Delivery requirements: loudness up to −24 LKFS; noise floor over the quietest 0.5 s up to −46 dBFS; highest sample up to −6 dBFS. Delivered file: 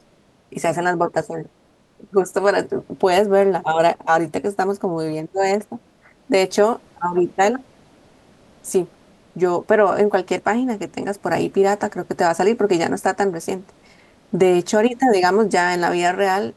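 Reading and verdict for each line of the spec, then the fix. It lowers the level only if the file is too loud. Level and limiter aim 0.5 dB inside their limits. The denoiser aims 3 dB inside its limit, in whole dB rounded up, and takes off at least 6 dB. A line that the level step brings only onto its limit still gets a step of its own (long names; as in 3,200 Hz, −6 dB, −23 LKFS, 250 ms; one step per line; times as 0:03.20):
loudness −19.5 LKFS: out of spec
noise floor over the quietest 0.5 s −57 dBFS: in spec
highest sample −3.0 dBFS: out of spec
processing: level −5 dB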